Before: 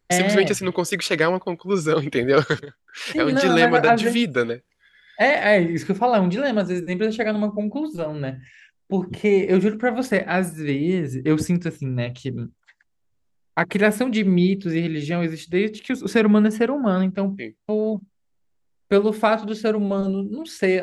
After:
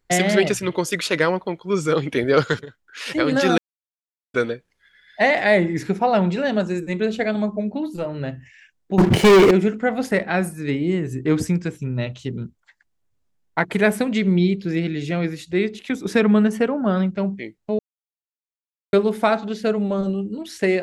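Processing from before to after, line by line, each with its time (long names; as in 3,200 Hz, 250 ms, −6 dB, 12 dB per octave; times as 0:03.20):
0:03.58–0:04.34: silence
0:08.98–0:09.51: leveller curve on the samples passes 5
0:17.79–0:18.93: silence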